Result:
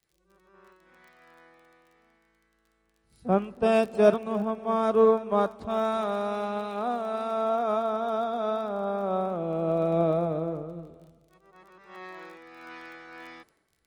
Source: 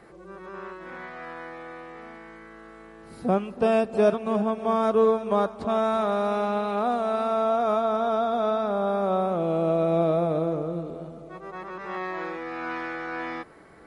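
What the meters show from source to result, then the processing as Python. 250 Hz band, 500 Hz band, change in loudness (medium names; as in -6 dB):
-3.0 dB, -2.0 dB, -1.5 dB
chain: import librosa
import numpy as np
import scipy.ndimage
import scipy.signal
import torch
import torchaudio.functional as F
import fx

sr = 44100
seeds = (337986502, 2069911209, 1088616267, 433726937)

y = fx.dmg_crackle(x, sr, seeds[0], per_s=26.0, level_db=-36.0)
y = fx.band_widen(y, sr, depth_pct=100)
y = y * librosa.db_to_amplitude(-3.5)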